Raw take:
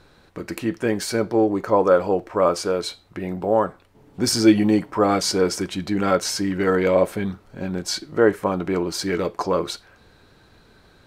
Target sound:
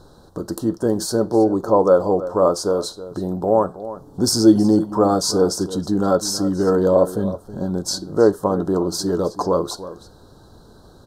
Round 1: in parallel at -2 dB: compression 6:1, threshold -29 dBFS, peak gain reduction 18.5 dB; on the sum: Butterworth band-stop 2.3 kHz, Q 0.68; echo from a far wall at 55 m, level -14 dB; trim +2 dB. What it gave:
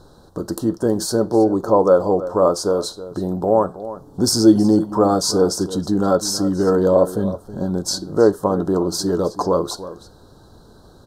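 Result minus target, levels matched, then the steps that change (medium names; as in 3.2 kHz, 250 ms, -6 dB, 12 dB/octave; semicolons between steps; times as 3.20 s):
compression: peak gain reduction -6 dB
change: compression 6:1, threshold -36 dBFS, peak gain reduction 24.5 dB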